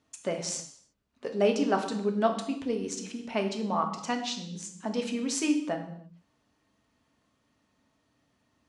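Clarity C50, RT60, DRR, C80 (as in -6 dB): 8.5 dB, no single decay rate, 3.5 dB, 11.5 dB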